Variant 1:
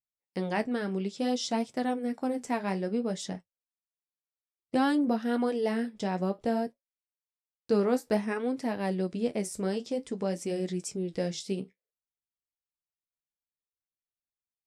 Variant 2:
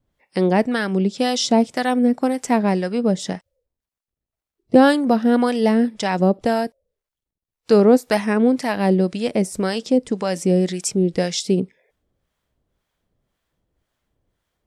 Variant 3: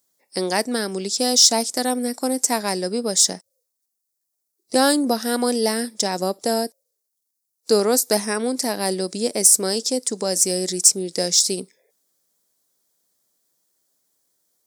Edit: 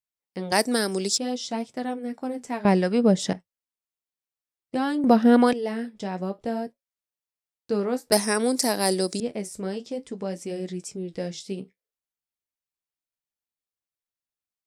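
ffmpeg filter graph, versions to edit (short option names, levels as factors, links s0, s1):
-filter_complex "[2:a]asplit=2[s0][s1];[1:a]asplit=2[s2][s3];[0:a]asplit=5[s4][s5][s6][s7][s8];[s4]atrim=end=0.522[s9];[s0]atrim=start=0.518:end=1.182[s10];[s5]atrim=start=1.178:end=2.652[s11];[s2]atrim=start=2.648:end=3.332[s12];[s6]atrim=start=3.328:end=5.042[s13];[s3]atrim=start=5.038:end=5.532[s14];[s7]atrim=start=5.528:end=8.122[s15];[s1]atrim=start=8.118:end=9.202[s16];[s8]atrim=start=9.198[s17];[s9][s10]acrossfade=d=0.004:c1=hsin:c2=hsin[s18];[s18][s11]acrossfade=d=0.004:c1=hsin:c2=hsin[s19];[s19][s12]acrossfade=d=0.004:c1=hsin:c2=hsin[s20];[s20][s13]acrossfade=d=0.004:c1=hsin:c2=hsin[s21];[s21][s14]acrossfade=d=0.004:c1=hsin:c2=hsin[s22];[s22][s15]acrossfade=d=0.004:c1=hsin:c2=hsin[s23];[s23][s16]acrossfade=d=0.004:c1=hsin:c2=hsin[s24];[s24][s17]acrossfade=d=0.004:c1=hsin:c2=hsin"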